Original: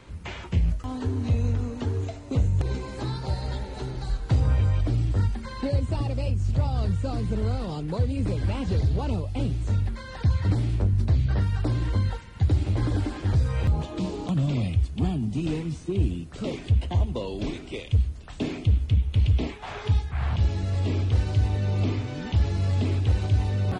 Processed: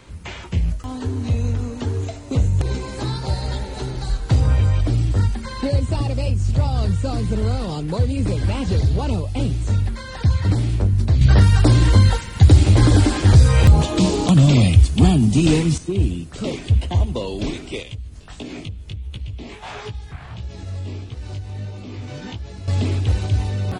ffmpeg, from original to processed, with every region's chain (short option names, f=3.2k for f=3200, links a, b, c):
-filter_complex "[0:a]asettb=1/sr,asplit=3[a][b][c];[a]atrim=end=11.214[d];[b]atrim=start=11.21:end=15.78,asetpts=PTS-STARTPTS,afade=t=in:d=0.004:c=qsin,afade=t=out:st=4.566:d=0.004:c=qsin,highshelf=f=4.7k:g=5,acontrast=88[e];[c]atrim=start=15.776[f];[d][e]acrossfade=d=0.004:c1=hsin:c2=qsin[g];[g][f]acrossfade=d=0.004:c1=qsin:c2=hsin,asettb=1/sr,asplit=3[h][i][j];[h]atrim=end=17.834[k];[i]atrim=start=17.83:end=22.68,asetpts=PTS-STARTPTS,afade=t=in:d=0.004:c=qsin,afade=t=out:st=4.846:d=0.004:c=qsin,acompressor=threshold=-30dB:ratio=12:attack=3.2:release=140:knee=1:detection=peak,flanger=delay=16:depth=5.8:speed=1.5[l];[j]atrim=start=22.676[m];[k][l]acrossfade=d=0.004:c1=hsin:c2=qsin[n];[n][m]acrossfade=d=0.004:c1=qsin:c2=hsin,highshelf=f=5k:g=7.5,dynaudnorm=f=780:g=5:m=3dB,volume=2.5dB"